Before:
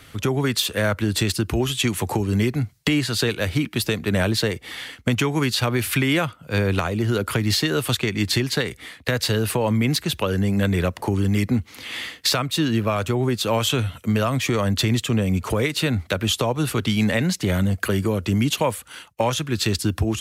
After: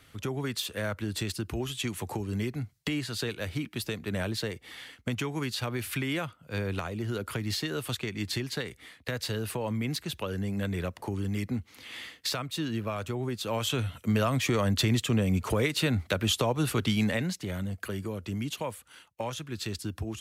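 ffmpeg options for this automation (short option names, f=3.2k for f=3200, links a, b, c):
-af "volume=-5dB,afade=t=in:st=13.42:d=0.76:silence=0.501187,afade=t=out:st=16.87:d=0.58:silence=0.398107"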